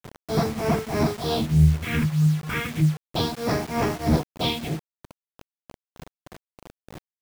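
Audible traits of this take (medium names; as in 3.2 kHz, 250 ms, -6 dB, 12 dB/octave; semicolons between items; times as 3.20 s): phasing stages 4, 0.33 Hz, lowest notch 620–3500 Hz; tremolo triangle 3.2 Hz, depth 95%; a quantiser's noise floor 8-bit, dither none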